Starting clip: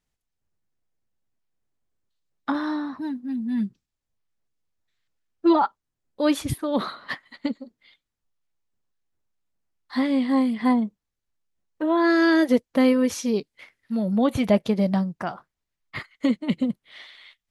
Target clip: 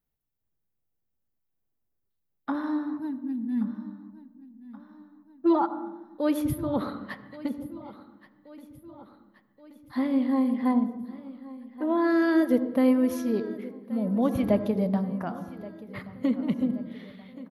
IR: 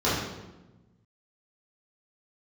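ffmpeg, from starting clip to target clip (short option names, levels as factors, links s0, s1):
-filter_complex "[0:a]highshelf=f=2100:g=-11.5,aexciter=amount=11.6:drive=2.6:freq=11000,aecho=1:1:1127|2254|3381|4508|5635:0.126|0.0743|0.0438|0.0259|0.0153,asplit=2[s0][s1];[1:a]atrim=start_sample=2205,highshelf=f=4900:g=-12,adelay=66[s2];[s1][s2]afir=irnorm=-1:irlink=0,volume=0.0473[s3];[s0][s3]amix=inputs=2:normalize=0,volume=0.668"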